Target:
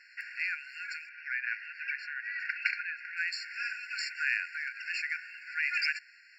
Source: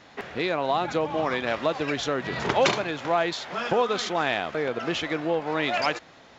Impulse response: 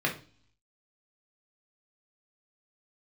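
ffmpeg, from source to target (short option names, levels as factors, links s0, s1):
-filter_complex "[0:a]asettb=1/sr,asplit=3[s0][s1][s2];[s0]atrim=end=1.094[s3];[s1]atrim=start=1.09:end=3.17,asetpts=PTS-STARTPTS,afade=t=in:d=0.004:c=qsin,afade=t=out:st=2.076:d=0.004:c=qsin,lowpass=2500[s4];[s2]atrim=start=3.166[s5];[s3][s4]acrossfade=d=0.004:c1=hsin:c2=qsin[s6];[s6][s5]acrossfade=d=0.004:c1=qsin:c2=hsin,afftfilt=real='re*eq(mod(floor(b*sr/1024/1400),2),1)':imag='im*eq(mod(floor(b*sr/1024/1400),2),1)':win_size=1024:overlap=0.75"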